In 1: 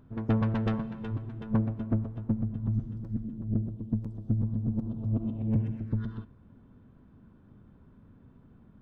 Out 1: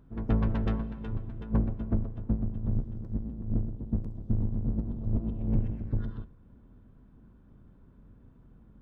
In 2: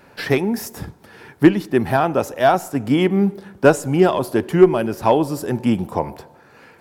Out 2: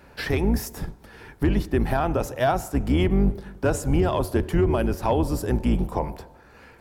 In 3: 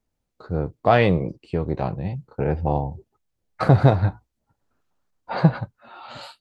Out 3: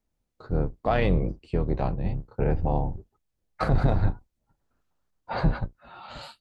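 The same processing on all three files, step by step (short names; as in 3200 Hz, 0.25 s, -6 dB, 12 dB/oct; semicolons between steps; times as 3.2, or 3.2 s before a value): octaver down 2 oct, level +2 dB; limiter -9.5 dBFS; gain -3 dB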